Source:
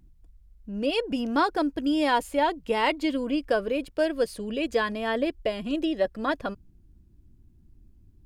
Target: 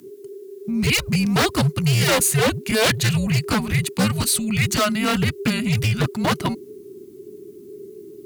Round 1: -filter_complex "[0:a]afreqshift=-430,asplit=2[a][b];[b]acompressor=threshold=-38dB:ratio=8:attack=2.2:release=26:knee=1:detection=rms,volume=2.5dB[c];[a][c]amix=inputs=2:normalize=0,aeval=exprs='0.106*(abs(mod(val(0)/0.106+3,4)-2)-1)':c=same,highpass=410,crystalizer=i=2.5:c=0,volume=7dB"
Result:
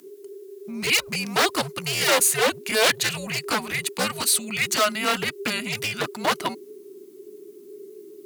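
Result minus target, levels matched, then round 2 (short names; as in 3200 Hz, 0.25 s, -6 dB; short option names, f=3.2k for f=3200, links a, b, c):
125 Hz band -15.0 dB
-filter_complex "[0:a]afreqshift=-430,asplit=2[a][b];[b]acompressor=threshold=-38dB:ratio=8:attack=2.2:release=26:knee=1:detection=rms,volume=2.5dB[c];[a][c]amix=inputs=2:normalize=0,aeval=exprs='0.106*(abs(mod(val(0)/0.106+3,4)-2)-1)':c=same,highpass=100,crystalizer=i=2.5:c=0,volume=7dB"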